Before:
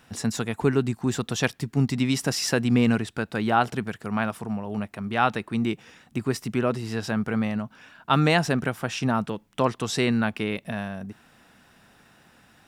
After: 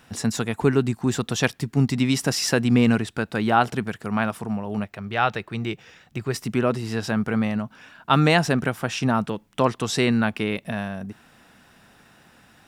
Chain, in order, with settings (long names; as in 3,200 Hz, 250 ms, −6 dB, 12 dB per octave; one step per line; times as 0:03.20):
0:04.84–0:06.34: graphic EQ with 15 bands 250 Hz −10 dB, 1,000 Hz −4 dB, 10,000 Hz −10 dB
level +2.5 dB